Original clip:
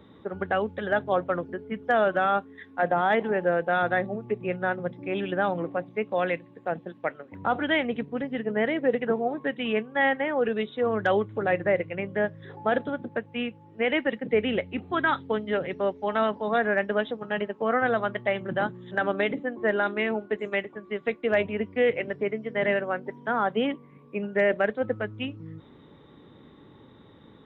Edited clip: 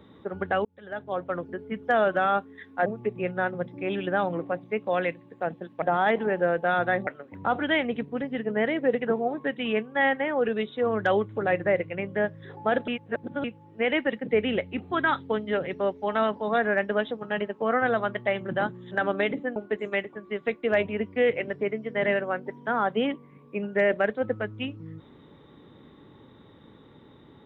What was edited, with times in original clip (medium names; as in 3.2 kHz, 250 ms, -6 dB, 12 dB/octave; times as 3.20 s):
0.65–1.62 s: fade in
2.86–4.11 s: move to 7.07 s
12.88–13.44 s: reverse
19.56–20.16 s: delete